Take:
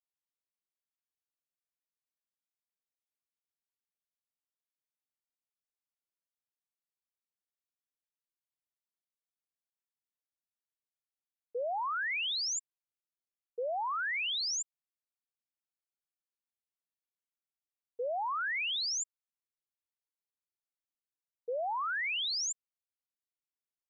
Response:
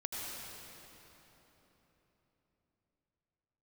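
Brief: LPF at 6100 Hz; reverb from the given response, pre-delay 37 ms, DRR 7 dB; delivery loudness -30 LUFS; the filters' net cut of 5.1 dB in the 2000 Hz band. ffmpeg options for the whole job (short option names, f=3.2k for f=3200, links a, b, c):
-filter_complex "[0:a]lowpass=6.1k,equalizer=f=2k:t=o:g=-6.5,asplit=2[a][b];[1:a]atrim=start_sample=2205,adelay=37[c];[b][c]afir=irnorm=-1:irlink=0,volume=-9.5dB[d];[a][d]amix=inputs=2:normalize=0,volume=5.5dB"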